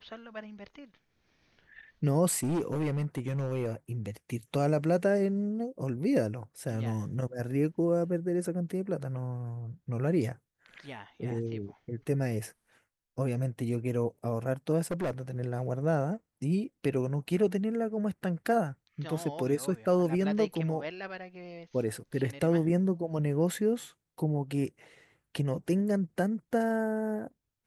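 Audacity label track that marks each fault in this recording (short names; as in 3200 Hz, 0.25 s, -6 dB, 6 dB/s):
2.430000	3.720000	clipped -26 dBFS
14.830000	15.210000	clipped -28 dBFS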